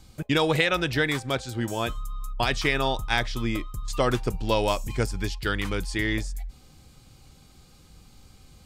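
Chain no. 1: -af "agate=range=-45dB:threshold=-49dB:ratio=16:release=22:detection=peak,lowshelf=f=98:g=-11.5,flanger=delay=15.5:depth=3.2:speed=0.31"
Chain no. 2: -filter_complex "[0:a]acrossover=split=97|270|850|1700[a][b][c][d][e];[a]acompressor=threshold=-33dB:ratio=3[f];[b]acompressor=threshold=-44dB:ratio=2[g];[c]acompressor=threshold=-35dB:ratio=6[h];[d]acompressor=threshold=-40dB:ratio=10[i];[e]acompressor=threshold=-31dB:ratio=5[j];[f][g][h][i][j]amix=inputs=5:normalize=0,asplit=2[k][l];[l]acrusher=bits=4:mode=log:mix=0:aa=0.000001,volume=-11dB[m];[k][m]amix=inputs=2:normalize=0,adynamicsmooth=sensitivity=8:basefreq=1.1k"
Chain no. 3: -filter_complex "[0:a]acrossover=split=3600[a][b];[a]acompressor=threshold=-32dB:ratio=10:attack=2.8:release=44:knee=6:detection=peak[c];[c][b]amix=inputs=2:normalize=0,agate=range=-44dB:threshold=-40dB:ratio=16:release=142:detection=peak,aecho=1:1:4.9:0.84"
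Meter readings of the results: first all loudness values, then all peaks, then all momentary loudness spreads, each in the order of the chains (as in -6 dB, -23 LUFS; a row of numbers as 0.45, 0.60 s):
-30.5, -30.5, -32.5 LUFS; -10.5, -11.5, -15.5 dBFS; 9, 6, 6 LU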